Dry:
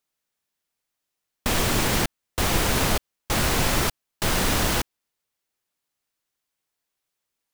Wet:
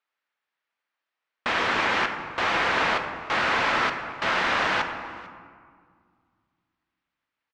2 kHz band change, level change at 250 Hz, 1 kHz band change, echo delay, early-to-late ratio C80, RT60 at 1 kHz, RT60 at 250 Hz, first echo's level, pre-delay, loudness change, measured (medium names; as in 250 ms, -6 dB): +5.0 dB, -7.5 dB, +4.0 dB, 447 ms, 8.0 dB, 2.0 s, 2.6 s, -23.0 dB, 3 ms, -0.5 dB